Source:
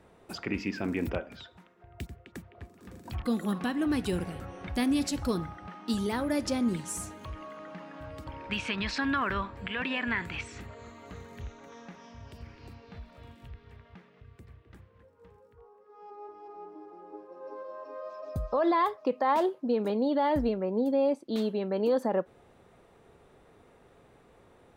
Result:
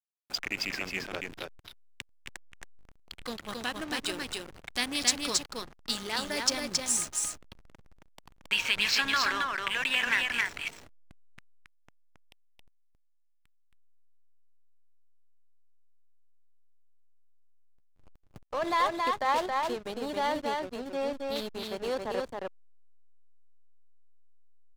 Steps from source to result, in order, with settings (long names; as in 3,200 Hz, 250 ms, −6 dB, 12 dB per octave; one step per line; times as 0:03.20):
meter weighting curve ITU-R 468
slack as between gear wheels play −29.5 dBFS
single-tap delay 272 ms −3 dB